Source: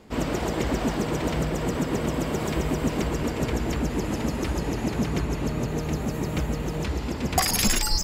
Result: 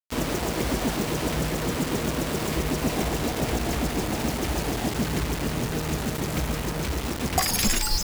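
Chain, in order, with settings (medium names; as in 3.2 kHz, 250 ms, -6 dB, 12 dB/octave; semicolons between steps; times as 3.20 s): 2.82–4.90 s: peaking EQ 720 Hz +6.5 dB 0.39 oct; bit crusher 5-bit; trim -1 dB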